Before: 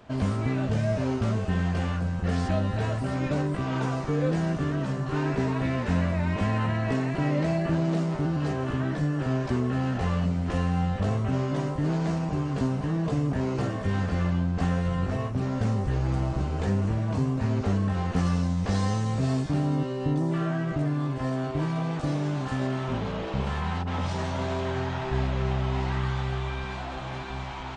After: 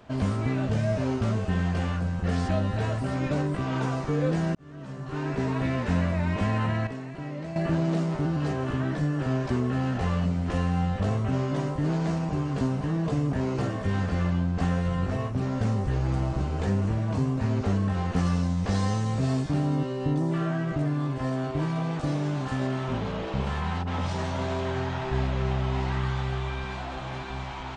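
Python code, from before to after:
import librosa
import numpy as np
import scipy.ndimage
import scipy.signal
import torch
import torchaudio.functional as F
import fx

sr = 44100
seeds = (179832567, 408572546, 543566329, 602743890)

y = fx.edit(x, sr, fx.fade_in_span(start_s=4.55, length_s=1.03),
    fx.clip_gain(start_s=6.87, length_s=0.69, db=-10.0), tone=tone)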